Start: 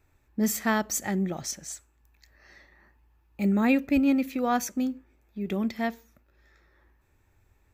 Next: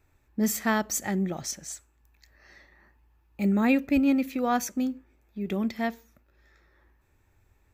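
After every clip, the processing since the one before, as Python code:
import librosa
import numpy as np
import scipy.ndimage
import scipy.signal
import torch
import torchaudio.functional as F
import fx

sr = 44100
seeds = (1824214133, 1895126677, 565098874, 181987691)

y = x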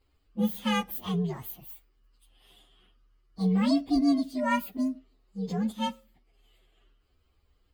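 y = fx.partial_stretch(x, sr, pct=127)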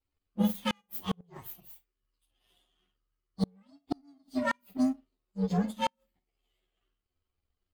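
y = fx.room_early_taps(x, sr, ms=(11, 52), db=(-4.5, -11.0))
y = fx.power_curve(y, sr, exponent=1.4)
y = fx.gate_flip(y, sr, shuts_db=-19.0, range_db=-40)
y = y * librosa.db_to_amplitude(4.0)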